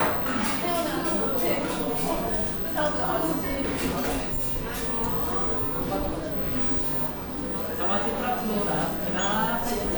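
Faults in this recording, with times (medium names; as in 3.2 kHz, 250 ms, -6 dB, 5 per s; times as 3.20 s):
3.91–4.51 s: clipped -23.5 dBFS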